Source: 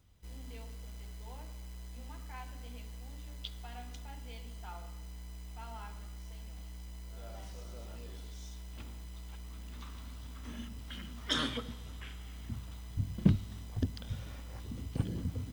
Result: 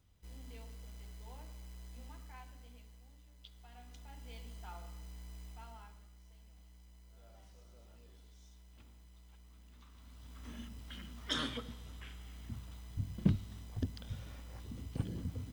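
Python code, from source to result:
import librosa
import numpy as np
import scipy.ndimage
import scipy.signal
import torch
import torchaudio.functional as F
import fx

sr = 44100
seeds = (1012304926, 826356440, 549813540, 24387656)

y = fx.gain(x, sr, db=fx.line((2.04, -4.0), (3.32, -15.0), (4.36, -3.0), (5.45, -3.0), (6.1, -13.0), (9.9, -13.0), (10.43, -4.0)))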